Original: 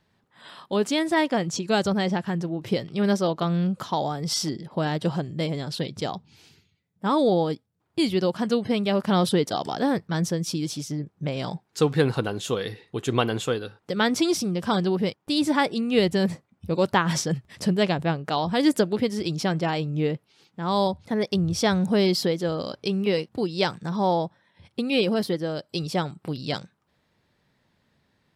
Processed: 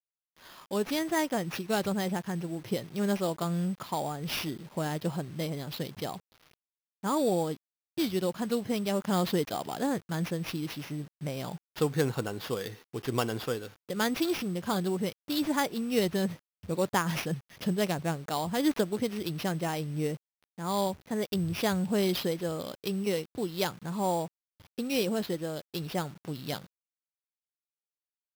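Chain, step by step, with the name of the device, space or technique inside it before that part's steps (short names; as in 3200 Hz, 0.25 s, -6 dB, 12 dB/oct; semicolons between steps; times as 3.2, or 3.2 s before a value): early 8-bit sampler (sample-rate reducer 8200 Hz, jitter 0%; bit-crush 8-bit); gain -6.5 dB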